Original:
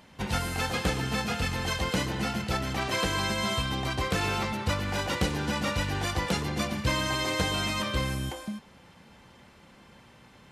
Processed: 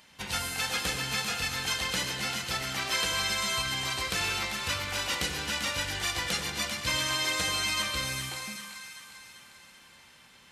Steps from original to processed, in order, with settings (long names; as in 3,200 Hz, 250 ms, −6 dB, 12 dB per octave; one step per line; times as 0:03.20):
tilt shelving filter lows −8 dB, about 1,200 Hz
echo with a time of its own for lows and highs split 960 Hz, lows 83 ms, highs 393 ms, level −6.5 dB
level −3.5 dB